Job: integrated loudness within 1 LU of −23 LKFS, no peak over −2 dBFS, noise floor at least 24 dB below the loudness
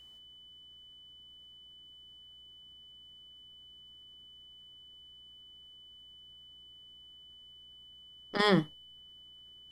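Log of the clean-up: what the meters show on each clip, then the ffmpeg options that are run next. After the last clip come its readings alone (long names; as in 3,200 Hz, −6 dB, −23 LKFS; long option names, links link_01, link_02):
mains hum 60 Hz; hum harmonics up to 360 Hz; level of the hum −70 dBFS; interfering tone 3,000 Hz; level of the tone −52 dBFS; integrated loudness −29.5 LKFS; sample peak −13.0 dBFS; target loudness −23.0 LKFS
→ -af "bandreject=frequency=60:width_type=h:width=4,bandreject=frequency=120:width_type=h:width=4,bandreject=frequency=180:width_type=h:width=4,bandreject=frequency=240:width_type=h:width=4,bandreject=frequency=300:width_type=h:width=4,bandreject=frequency=360:width_type=h:width=4"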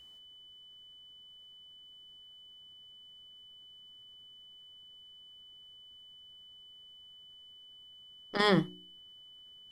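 mains hum none found; interfering tone 3,000 Hz; level of the tone −52 dBFS
→ -af "bandreject=frequency=3000:width=30"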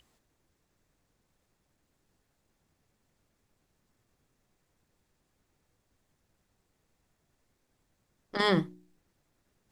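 interfering tone none found; integrated loudness −29.0 LKFS; sample peak −13.5 dBFS; target loudness −23.0 LKFS
→ -af "volume=6dB"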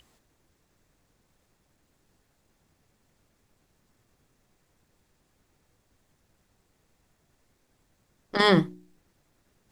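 integrated loudness −23.5 LKFS; sample peak −7.5 dBFS; background noise floor −71 dBFS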